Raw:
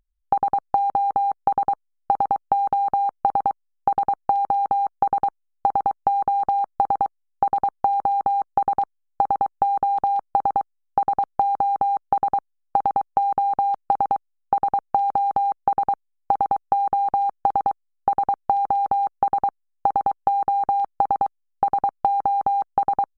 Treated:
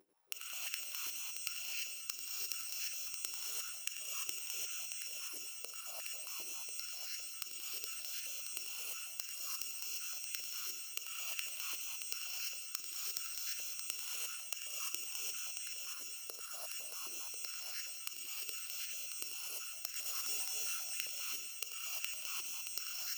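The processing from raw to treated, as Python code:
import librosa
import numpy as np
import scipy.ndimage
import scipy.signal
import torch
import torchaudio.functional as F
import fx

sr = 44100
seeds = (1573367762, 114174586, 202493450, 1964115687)

p1 = fx.bit_reversed(x, sr, seeds[0], block=256)
p2 = fx.dereverb_blind(p1, sr, rt60_s=1.7)
p3 = fx.over_compress(p2, sr, threshold_db=-22.0, ratio=-0.5)
p4 = fx.leveller(p3, sr, passes=5, at=(19.93, 20.45))
p5 = fx.gate_flip(p4, sr, shuts_db=-26.0, range_db=-30)
p6 = p5 + fx.echo_multitap(p5, sr, ms=(91, 178, 498, 625), db=(-10.0, -13.5, -20.0, -6.0), dry=0)
p7 = fx.rev_gated(p6, sr, seeds[1], gate_ms=370, shape='rising', drr_db=-4.5)
p8 = fx.filter_held_highpass(p7, sr, hz=7.5, low_hz=350.0, high_hz=1700.0)
y = p8 * 10.0 ** (3.0 / 20.0)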